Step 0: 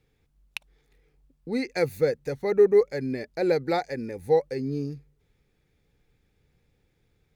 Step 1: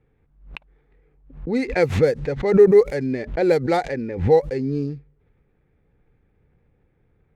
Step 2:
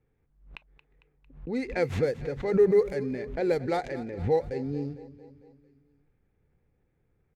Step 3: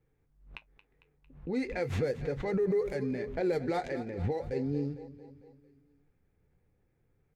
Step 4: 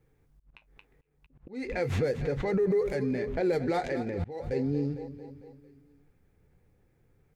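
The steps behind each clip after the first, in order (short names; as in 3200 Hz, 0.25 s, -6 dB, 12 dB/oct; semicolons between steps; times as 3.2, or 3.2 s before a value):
median filter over 9 samples; low-pass opened by the level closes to 1900 Hz, open at -18.5 dBFS; backwards sustainer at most 110 dB/s; gain +5.5 dB
feedback echo 0.226 s, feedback 57%, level -16 dB; on a send at -20 dB: reverb, pre-delay 3 ms; on the sum: gain -8.5 dB
limiter -22 dBFS, peak gain reduction 9.5 dB; flange 0.4 Hz, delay 5.9 ms, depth 6.5 ms, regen -56%; gain +3 dB
in parallel at +0.5 dB: limiter -32.5 dBFS, peak gain reduction 11 dB; on the sum: auto swell 0.276 s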